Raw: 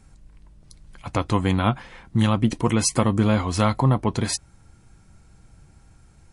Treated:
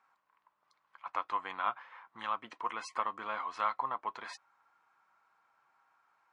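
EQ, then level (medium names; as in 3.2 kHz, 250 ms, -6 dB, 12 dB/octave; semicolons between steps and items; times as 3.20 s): dynamic bell 1 kHz, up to -6 dB, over -39 dBFS, Q 1.5; ladder band-pass 1.2 kHz, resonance 60%; +4.0 dB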